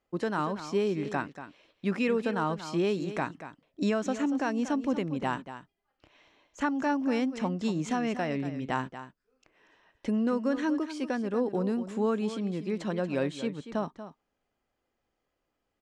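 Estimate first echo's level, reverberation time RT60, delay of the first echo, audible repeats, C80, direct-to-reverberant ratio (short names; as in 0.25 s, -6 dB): -12.0 dB, none, 0.236 s, 1, none, none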